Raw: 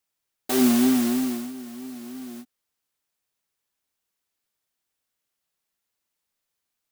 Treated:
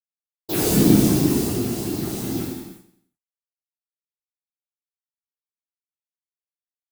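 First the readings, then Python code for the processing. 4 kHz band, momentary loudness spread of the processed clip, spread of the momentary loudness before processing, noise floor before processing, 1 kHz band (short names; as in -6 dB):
+4.0 dB, 13 LU, 19 LU, -82 dBFS, +2.0 dB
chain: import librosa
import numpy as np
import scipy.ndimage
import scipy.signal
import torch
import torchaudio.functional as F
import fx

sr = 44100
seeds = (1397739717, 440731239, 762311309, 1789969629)

p1 = fx.hum_notches(x, sr, base_hz=50, count=5)
p2 = fx.over_compress(p1, sr, threshold_db=-33.0, ratio=-1.0)
p3 = p1 + (p2 * 10.0 ** (-2.0 / 20.0))
p4 = np.where(np.abs(p3) >= 10.0 ** (-32.5 / 20.0), p3, 0.0)
p5 = fx.whisperise(p4, sr, seeds[0])
p6 = fx.phaser_stages(p5, sr, stages=4, low_hz=180.0, high_hz=2500.0, hz=2.7, feedback_pct=40)
p7 = p6 + fx.echo_feedback(p6, sr, ms=89, feedback_pct=45, wet_db=-13.0, dry=0)
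p8 = fx.rev_gated(p7, sr, seeds[1], gate_ms=410, shape='falling', drr_db=-8.0)
y = p8 * 10.0 ** (-4.5 / 20.0)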